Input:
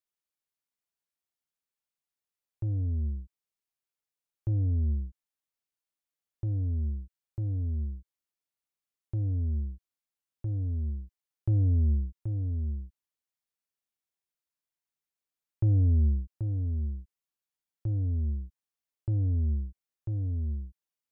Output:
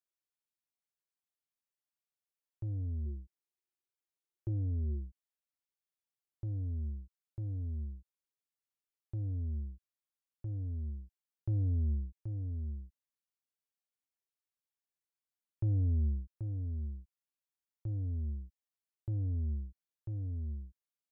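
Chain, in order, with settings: 3.05–5.05 bell 360 Hz +12.5 dB 0.22 oct; gain -7 dB

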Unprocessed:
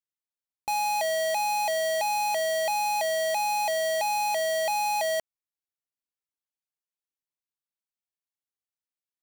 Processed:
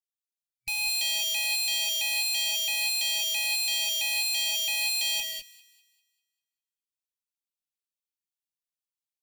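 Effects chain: FFT band-reject 120–2300 Hz; sample leveller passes 3; fixed phaser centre 320 Hz, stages 6; on a send: thin delay 0.198 s, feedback 40%, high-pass 1600 Hz, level -19 dB; on the sum: non-linear reverb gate 0.23 s rising, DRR 1.5 dB; gain +2.5 dB

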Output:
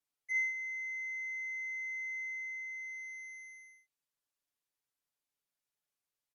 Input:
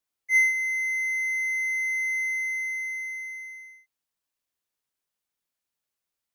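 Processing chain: treble ducked by the level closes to 2700 Hz, closed at -27 dBFS; comb 7 ms, depth 83%; gain -7.5 dB

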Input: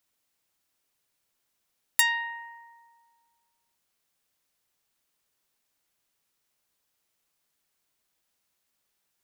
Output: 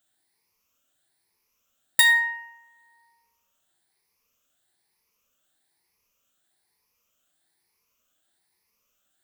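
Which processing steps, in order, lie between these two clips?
moving spectral ripple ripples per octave 0.84, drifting +1.1 Hz, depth 13 dB; on a send: reverb RT60 0.60 s, pre-delay 6 ms, DRR 3 dB

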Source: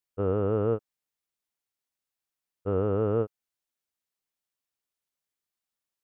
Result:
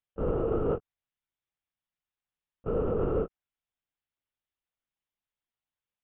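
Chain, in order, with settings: LPC vocoder at 8 kHz whisper; gain -2 dB

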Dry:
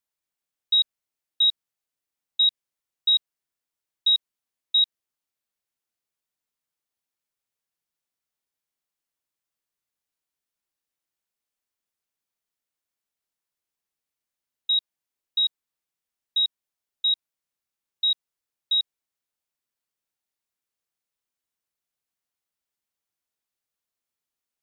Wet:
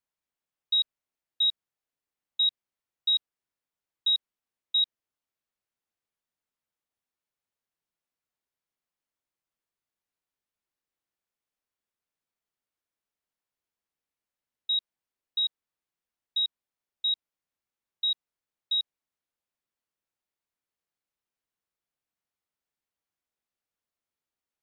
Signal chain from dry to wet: high shelf 3600 Hz -9 dB

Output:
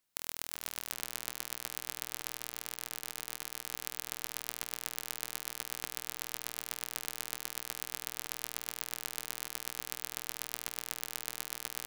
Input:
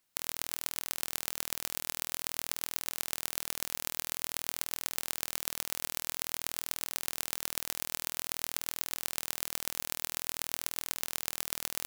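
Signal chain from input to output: 2.31–3.71 negative-ratio compressor -39 dBFS, ratio -0.5; darkening echo 0.386 s, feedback 65%, low-pass 2500 Hz, level -9.5 dB; gain -4 dB

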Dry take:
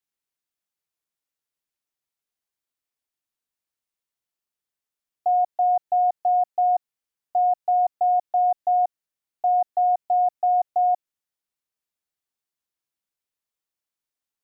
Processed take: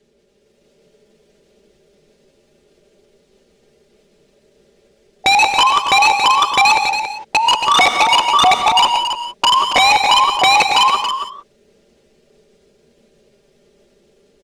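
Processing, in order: repeated pitch sweeps +9 st, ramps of 0.649 s; resonant low shelf 700 Hz +13 dB, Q 3; comb 5 ms, depth 86%; in parallel at +1 dB: compressor 8:1, threshold -25 dBFS, peak gain reduction 13 dB; on the sum: sample leveller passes 1; limiter -9.5 dBFS, peak gain reduction 3.5 dB; AGC gain up to 7 dB; wrapped overs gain 6.5 dB; power-law curve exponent 0.7; air absorption 95 m; on a send: echo 0.278 s -8 dB; on the sum: non-linear reverb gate 0.2 s rising, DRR 7 dB

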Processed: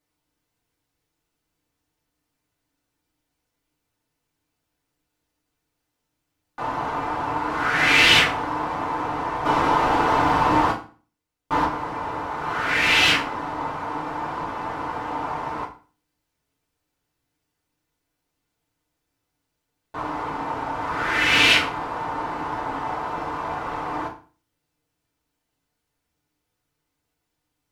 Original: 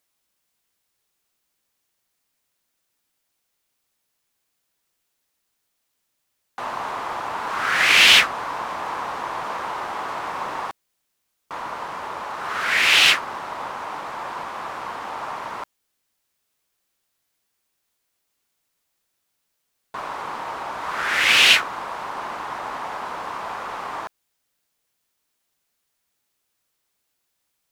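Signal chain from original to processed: 9.45–11.65 sample leveller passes 3; tilt -2.5 dB/oct; FDN reverb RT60 0.38 s, low-frequency decay 1.25×, high-frequency decay 0.9×, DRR -5 dB; gain -5 dB

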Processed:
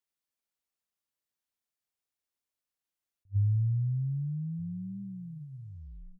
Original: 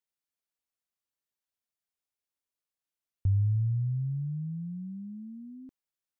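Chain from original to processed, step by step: tape stop at the end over 1.19 s; outdoor echo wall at 230 m, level -24 dB; attack slew limiter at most 540 dB/s

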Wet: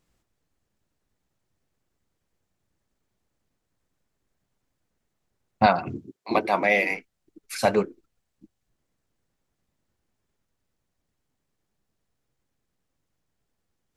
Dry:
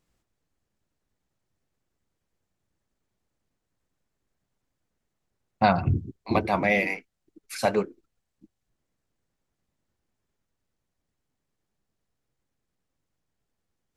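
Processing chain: 5.66–6.91 HPF 300 Hz 12 dB/oct; gain +2.5 dB

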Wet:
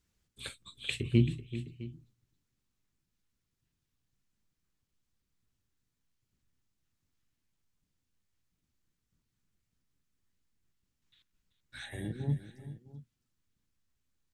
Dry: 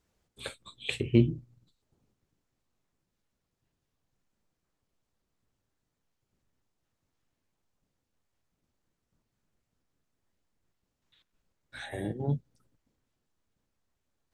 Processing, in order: bell 630 Hz -12 dB 1.8 oct; tapped delay 0.384/0.659 s -14/-18 dB

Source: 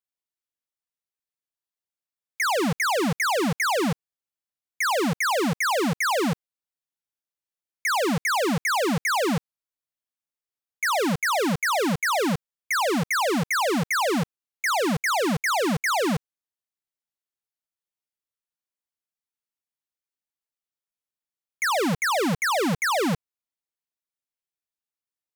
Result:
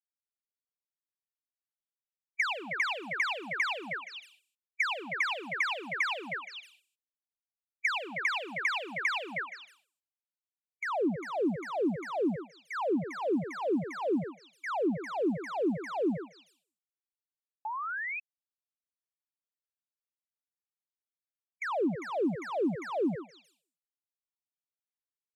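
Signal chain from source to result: per-bin expansion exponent 3; delay with a stepping band-pass 0.156 s, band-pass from 580 Hz, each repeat 1.4 oct, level -7 dB; band-pass sweep 2600 Hz -> 310 Hz, 9.3–11.01; painted sound rise, 17.65–18.2, 840–2600 Hz -49 dBFS; three-band squash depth 70%; gain +4.5 dB

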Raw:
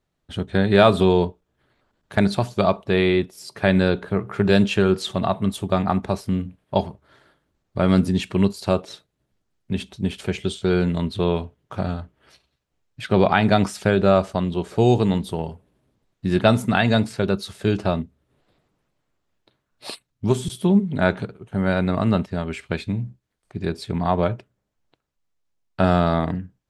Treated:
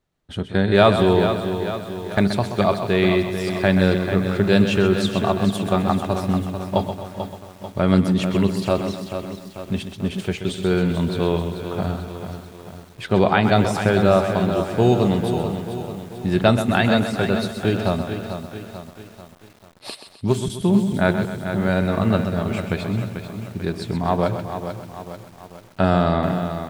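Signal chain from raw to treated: feedback echo 0.129 s, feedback 49%, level -9.5 dB; lo-fi delay 0.441 s, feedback 55%, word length 7-bit, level -8.5 dB

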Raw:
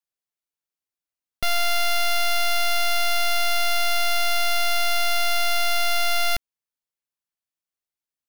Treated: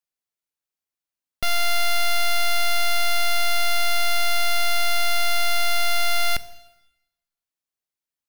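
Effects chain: plate-style reverb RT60 0.96 s, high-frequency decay 1×, DRR 14.5 dB

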